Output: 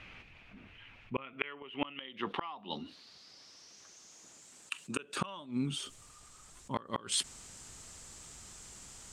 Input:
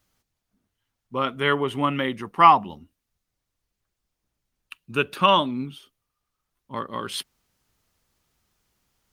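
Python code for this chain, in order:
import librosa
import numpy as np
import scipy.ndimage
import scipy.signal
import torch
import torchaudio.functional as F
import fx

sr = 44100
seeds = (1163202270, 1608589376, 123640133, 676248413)

y = fx.highpass(x, sr, hz=250.0, slope=12, at=(1.33, 5.17))
y = fx.gate_flip(y, sr, shuts_db=-17.0, range_db=-39)
y = fx.filter_sweep_lowpass(y, sr, from_hz=2500.0, to_hz=7700.0, start_s=1.46, end_s=4.53, q=6.0)
y = fx.env_flatten(y, sr, amount_pct=50)
y = y * 10.0 ** (-4.5 / 20.0)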